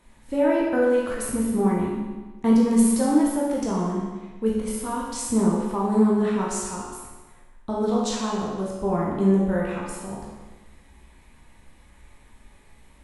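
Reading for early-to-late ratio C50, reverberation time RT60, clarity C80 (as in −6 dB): 0.0 dB, 1.3 s, 2.5 dB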